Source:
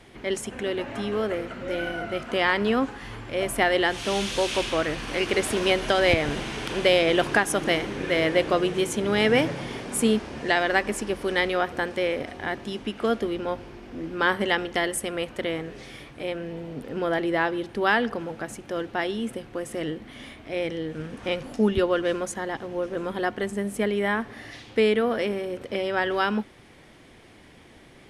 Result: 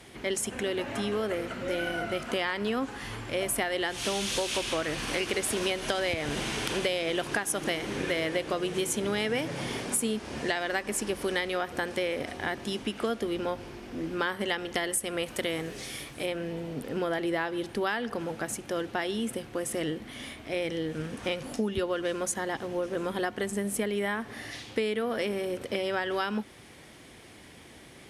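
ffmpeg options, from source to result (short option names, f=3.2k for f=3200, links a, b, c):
-filter_complex "[0:a]asettb=1/sr,asplit=3[a][b][c];[a]atrim=end=15.264[d];[b]atrim=start=15.26:end=16.26,asetpts=PTS-STARTPTS,afade=t=in:d=0.004:c=qsin,afade=t=out:st=0.996:d=0.004:c=qsin,highshelf=f=5.2k:g=8.5[e];[c]atrim=start=16.256[f];[d][e]acrossfade=d=0.004:c1=hsin:c2=qsin[g];[g][f]acrossfade=d=0.004:c1=qsin:c2=hsin,highpass=43,aemphasis=mode=production:type=cd,acompressor=threshold=-26dB:ratio=6"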